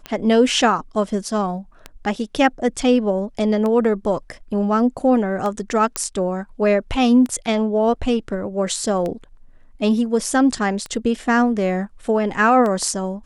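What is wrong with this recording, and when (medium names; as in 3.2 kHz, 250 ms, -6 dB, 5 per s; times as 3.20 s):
tick 33 1/3 rpm -14 dBFS
5.96 s: pop -4 dBFS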